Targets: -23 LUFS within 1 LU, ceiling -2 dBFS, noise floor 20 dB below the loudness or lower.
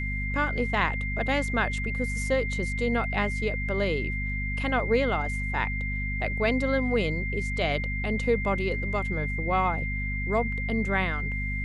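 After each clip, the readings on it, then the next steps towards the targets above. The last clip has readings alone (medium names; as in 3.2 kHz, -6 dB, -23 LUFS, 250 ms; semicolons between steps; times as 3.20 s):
hum 50 Hz; highest harmonic 250 Hz; hum level -29 dBFS; steady tone 2.1 kHz; tone level -32 dBFS; loudness -27.5 LUFS; peak level -10.0 dBFS; loudness target -23.0 LUFS
-> de-hum 50 Hz, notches 5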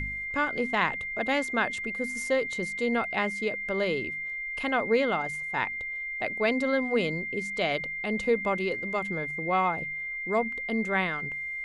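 hum not found; steady tone 2.1 kHz; tone level -32 dBFS
-> band-stop 2.1 kHz, Q 30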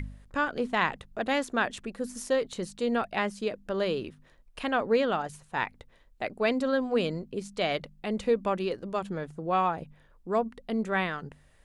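steady tone not found; loudness -30.0 LUFS; peak level -11.0 dBFS; loudness target -23.0 LUFS
-> trim +7 dB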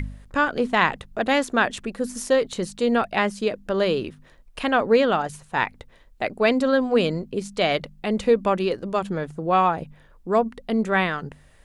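loudness -23.0 LUFS; peak level -4.0 dBFS; noise floor -53 dBFS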